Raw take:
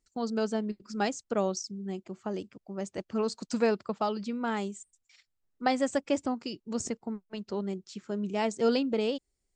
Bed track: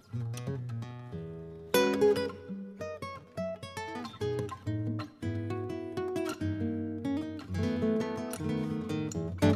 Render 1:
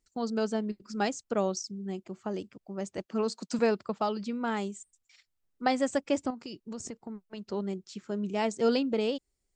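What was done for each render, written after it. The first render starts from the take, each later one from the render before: 3.05–3.59 steep high-pass 160 Hz; 6.3–7.45 compressor 5:1, threshold -36 dBFS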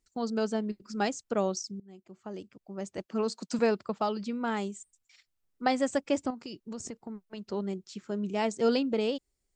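1.8–3.52 fade in equal-power, from -22 dB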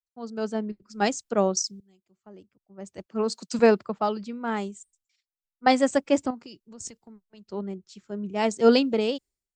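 AGC gain up to 3.5 dB; three-band expander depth 100%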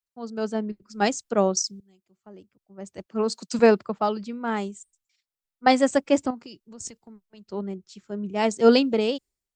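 gain +1.5 dB

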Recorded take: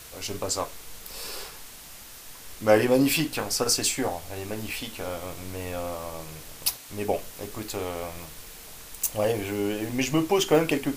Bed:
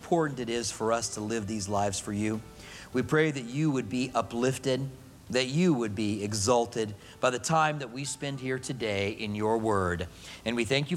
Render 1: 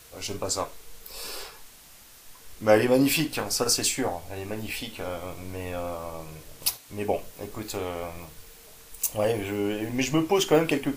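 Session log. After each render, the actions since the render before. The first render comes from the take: noise print and reduce 6 dB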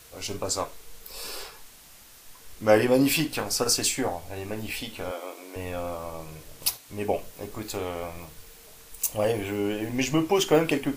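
5.11–5.56 steep high-pass 280 Hz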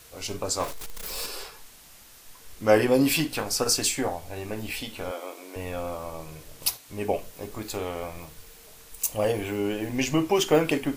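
0.6–1.26 zero-crossing step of -32 dBFS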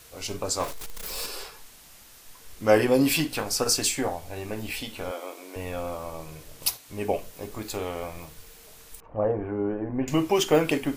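9–10.08 LPF 1400 Hz 24 dB/oct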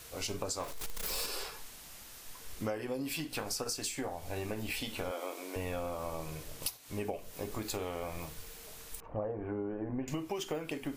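compressor 16:1, threshold -33 dBFS, peak gain reduction 21 dB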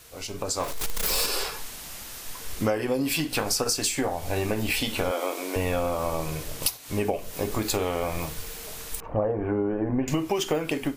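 AGC gain up to 11 dB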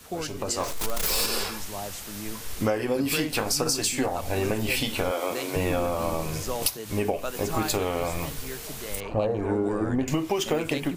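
add bed -8 dB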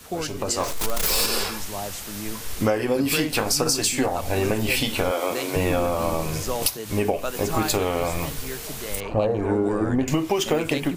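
gain +3.5 dB; limiter -3 dBFS, peak gain reduction 1 dB

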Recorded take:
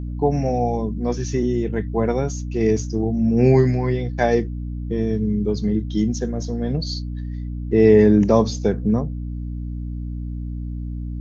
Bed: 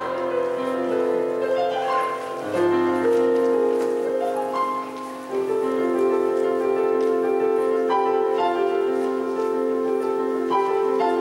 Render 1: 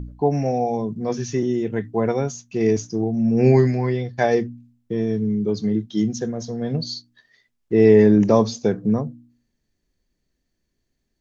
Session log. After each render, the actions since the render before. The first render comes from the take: de-hum 60 Hz, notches 5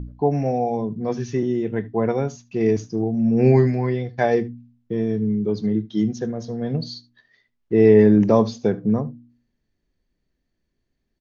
air absorption 130 m; echo 75 ms -21.5 dB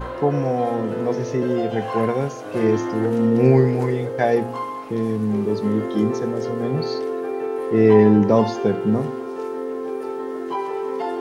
add bed -5 dB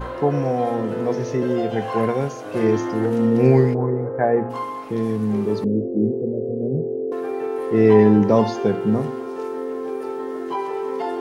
3.73–4.49 LPF 1100 Hz -> 2000 Hz 24 dB/oct; 5.64–7.12 steep low-pass 600 Hz 48 dB/oct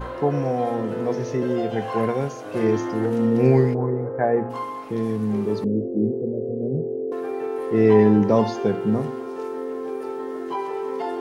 gain -2 dB

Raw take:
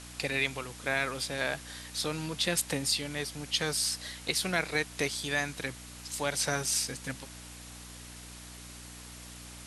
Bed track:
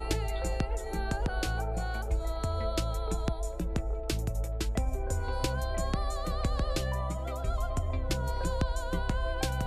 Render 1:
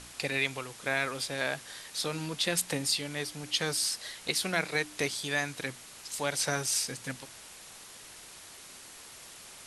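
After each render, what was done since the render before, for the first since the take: de-hum 60 Hz, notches 5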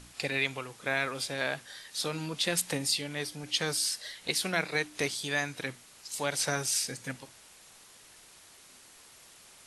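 noise print and reduce 6 dB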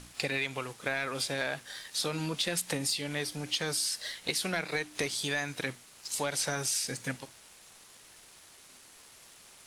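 sample leveller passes 1; compressor, threshold -28 dBFS, peak gain reduction 7 dB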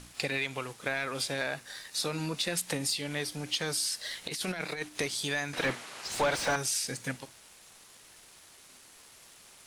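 1.39–2.54 notch 3200 Hz, Q 9.6; 4.11–4.89 negative-ratio compressor -34 dBFS, ratio -0.5; 5.53–6.56 overdrive pedal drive 26 dB, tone 1400 Hz, clips at -17 dBFS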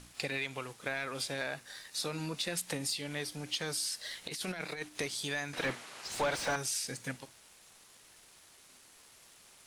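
gain -4 dB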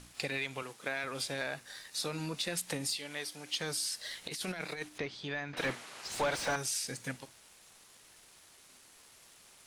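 0.62–1.04 HPF 170 Hz; 2.97–3.54 HPF 530 Hz 6 dB/oct; 4.98–5.57 air absorption 230 m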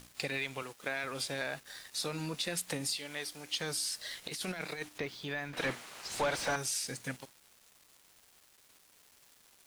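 sample gate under -52 dBFS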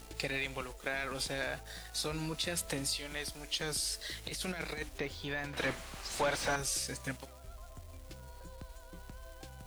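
add bed track -19 dB

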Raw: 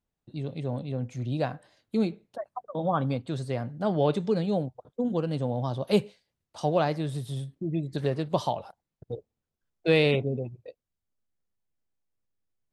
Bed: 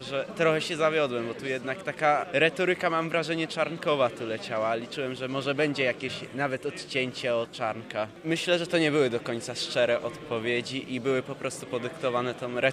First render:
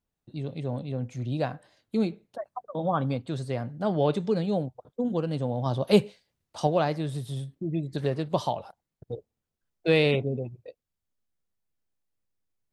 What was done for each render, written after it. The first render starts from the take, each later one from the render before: 5.66–6.67 gain +3.5 dB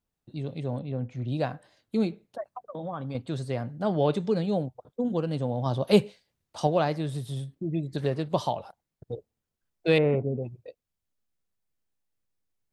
0.79–1.28 Bessel low-pass 2800 Hz; 2.51–3.15 compressor 2.5:1, threshold -34 dBFS; 9.98–10.43 LPF 1600 Hz 24 dB/oct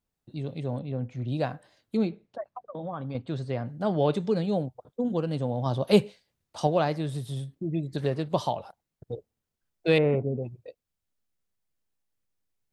1.97–3.66 air absorption 99 m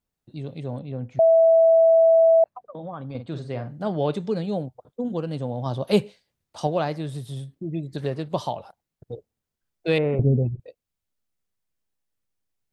1.19–2.44 bleep 656 Hz -12 dBFS; 3.06–3.88 doubler 49 ms -9 dB; 10.19–10.6 tilt -4.5 dB/oct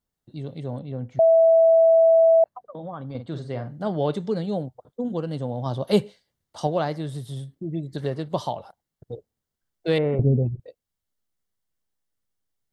notch 2500 Hz, Q 7.1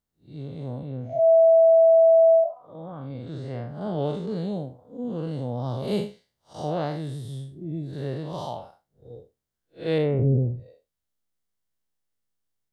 time blur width 0.136 s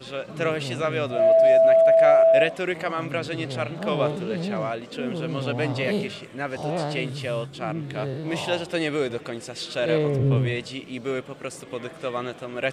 add bed -1.5 dB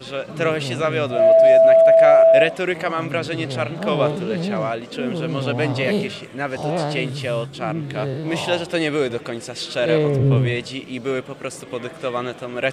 gain +4.5 dB; limiter -3 dBFS, peak gain reduction 1 dB

